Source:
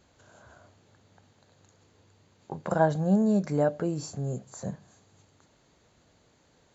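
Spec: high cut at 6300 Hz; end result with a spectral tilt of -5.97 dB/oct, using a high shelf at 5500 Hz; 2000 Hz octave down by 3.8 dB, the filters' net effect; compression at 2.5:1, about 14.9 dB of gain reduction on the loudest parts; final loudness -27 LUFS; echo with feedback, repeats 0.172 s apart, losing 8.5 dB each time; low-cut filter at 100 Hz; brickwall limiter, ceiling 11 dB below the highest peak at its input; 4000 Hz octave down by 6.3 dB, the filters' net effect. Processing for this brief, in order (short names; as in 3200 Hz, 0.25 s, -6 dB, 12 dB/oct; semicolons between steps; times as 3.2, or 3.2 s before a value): HPF 100 Hz; LPF 6300 Hz; bell 2000 Hz -4.5 dB; bell 4000 Hz -9 dB; high shelf 5500 Hz +5.5 dB; compressor 2.5:1, threshold -42 dBFS; limiter -35 dBFS; feedback echo 0.172 s, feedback 38%, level -8.5 dB; gain +18 dB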